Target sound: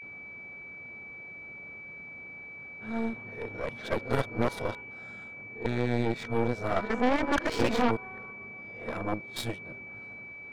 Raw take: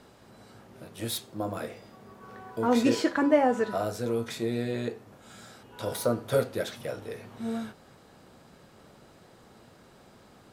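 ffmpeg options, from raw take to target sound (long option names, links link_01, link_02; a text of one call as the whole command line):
ffmpeg -i in.wav -af "areverse,aemphasis=mode=production:type=cd,afftfilt=real='re*lt(hypot(re,im),0.631)':imag='im*lt(hypot(re,im),0.631)':win_size=1024:overlap=0.75,adynamicsmooth=sensitivity=2.5:basefreq=1900,aeval=exprs='0.211*(cos(1*acos(clip(val(0)/0.211,-1,1)))-cos(1*PI/2))+0.0422*(cos(6*acos(clip(val(0)/0.211,-1,1)))-cos(6*PI/2))':channel_layout=same,aeval=exprs='val(0)+0.00794*sin(2*PI*2300*n/s)':channel_layout=same" out.wav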